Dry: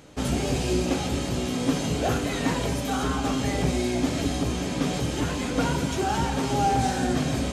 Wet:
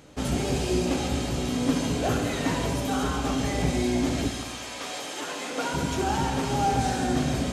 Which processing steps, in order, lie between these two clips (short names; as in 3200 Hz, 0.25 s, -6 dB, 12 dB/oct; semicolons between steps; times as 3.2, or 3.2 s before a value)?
4.28–5.73 HPF 1100 Hz -> 380 Hz 12 dB/oct; multi-head echo 69 ms, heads first and second, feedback 60%, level -12.5 dB; gain -1.5 dB